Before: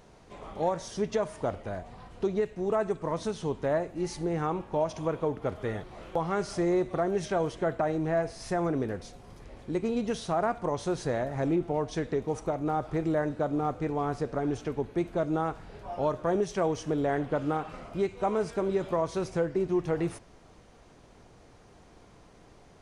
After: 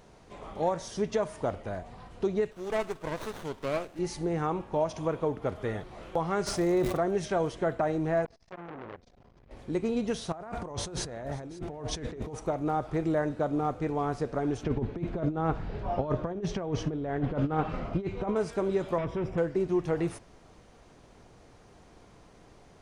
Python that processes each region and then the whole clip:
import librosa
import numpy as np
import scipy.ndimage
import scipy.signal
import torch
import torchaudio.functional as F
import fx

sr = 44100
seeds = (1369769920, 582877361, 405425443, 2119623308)

y = fx.chain(x, sr, fx.tilt_shelf(db=-9.5, hz=940.0),
    fx.running_max(window=17), at=(2.51, 3.99))
y = fx.dmg_crackle(y, sr, seeds[0], per_s=290.0, level_db=-38.0, at=(6.46, 6.96), fade=0.02)
y = fx.sustainer(y, sr, db_per_s=54.0, at=(6.46, 6.96), fade=0.02)
y = fx.chain(y, sr, fx.level_steps(step_db=18),
    fx.air_absorb(metres=150.0),
    fx.transformer_sat(knee_hz=1300.0), at=(8.25, 9.51))
y = fx.chain(y, sr, fx.peak_eq(hz=62.0, db=7.0, octaves=1.1),
    fx.over_compress(threshold_db=-38.0, ratio=-1.0),
    fx.echo_single(ms=541, db=-19.5), at=(10.32, 12.35))
y = fx.chain(y, sr, fx.lowpass(hz=4300.0, slope=12),
    fx.low_shelf(hz=330.0, db=8.0),
    fx.over_compress(threshold_db=-28.0, ratio=-0.5), at=(14.63, 18.36))
y = fx.chain(y, sr, fx.overload_stage(gain_db=33.5),
    fx.savgol(points=25),
    fx.low_shelf(hz=490.0, db=8.0), at=(18.98, 19.38))